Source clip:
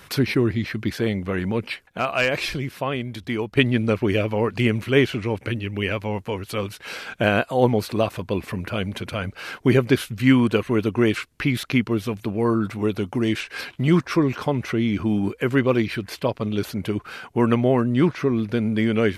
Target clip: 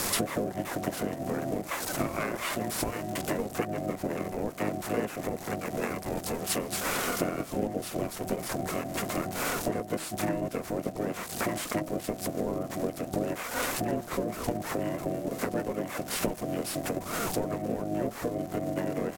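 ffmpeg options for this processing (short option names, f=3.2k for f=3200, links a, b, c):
-filter_complex "[0:a]aeval=exprs='val(0)+0.5*0.0447*sgn(val(0))':c=same,highpass=77,bandreject=f=50:t=h:w=6,bandreject=f=100:t=h:w=6,bandreject=f=150:t=h:w=6,bandreject=f=200:t=h:w=6,bandreject=f=250:t=h:w=6,asplit=2[a][b];[b]acrusher=bits=2:mix=0:aa=0.5,volume=-9dB[c];[a][c]amix=inputs=2:normalize=0,equalizer=f=5.4k:w=1.3:g=-11.5,acompressor=threshold=-28dB:ratio=8,aemphasis=mode=production:type=cd,afreqshift=-430,asetrate=37084,aresample=44100,atempo=1.18921,aeval=exprs='val(0)*sin(2*PI*470*n/s)':c=same,asplit=3[d][e][f];[e]asetrate=22050,aresample=44100,atempo=2,volume=-3dB[g];[f]asetrate=37084,aresample=44100,atempo=1.18921,volume=-8dB[h];[d][g][h]amix=inputs=3:normalize=0,volume=1dB"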